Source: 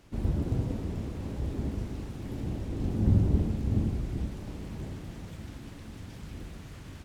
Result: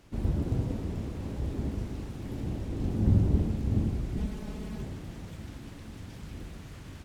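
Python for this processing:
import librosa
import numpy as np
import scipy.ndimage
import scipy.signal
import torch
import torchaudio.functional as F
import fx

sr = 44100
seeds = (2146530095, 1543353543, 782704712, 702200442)

y = fx.comb(x, sr, ms=4.7, depth=0.73, at=(4.16, 4.83))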